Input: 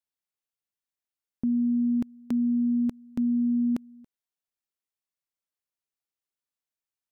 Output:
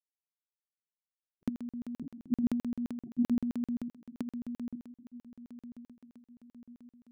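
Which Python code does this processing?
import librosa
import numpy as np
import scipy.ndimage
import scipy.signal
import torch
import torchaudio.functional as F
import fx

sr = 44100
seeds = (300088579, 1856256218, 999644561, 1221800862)

y = fx.law_mismatch(x, sr, coded='A')
y = fx.dereverb_blind(y, sr, rt60_s=0.67)
y = fx.comb_fb(y, sr, f0_hz=280.0, decay_s=0.56, harmonics='all', damping=0.0, mix_pct=30)
y = fx.level_steps(y, sr, step_db=14)
y = scipy.signal.sosfilt(scipy.signal.butter(2, 61.0, 'highpass', fs=sr, output='sos'), y)
y = fx.peak_eq(y, sr, hz=160.0, db=5.0, octaves=0.36)
y = fx.echo_diffused(y, sr, ms=938, feedback_pct=53, wet_db=-14.5)
y = fx.spec_gate(y, sr, threshold_db=-15, keep='strong')
y = fx.low_shelf(y, sr, hz=83.0, db=-11.5)
y = y + 10.0 ** (-3.5 / 20.0) * np.pad(y, (int(988 * sr / 1000.0), 0))[:len(y)]
y = fx.buffer_crackle(y, sr, first_s=0.39, period_s=0.13, block=2048, kind='zero')
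y = fx.sustainer(y, sr, db_per_s=54.0, at=(1.8, 3.83))
y = y * 10.0 ** (4.5 / 20.0)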